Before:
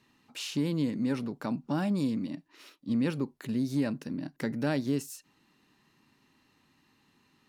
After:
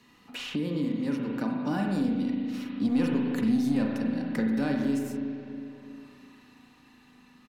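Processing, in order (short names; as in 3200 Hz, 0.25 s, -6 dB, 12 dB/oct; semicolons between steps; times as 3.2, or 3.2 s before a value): Doppler pass-by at 3.3, 8 m/s, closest 6.2 m; sample leveller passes 1; comb 4.1 ms, depth 33%; spring tank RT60 1.6 s, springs 36/40 ms, chirp 60 ms, DRR 0 dB; three-band squash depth 70%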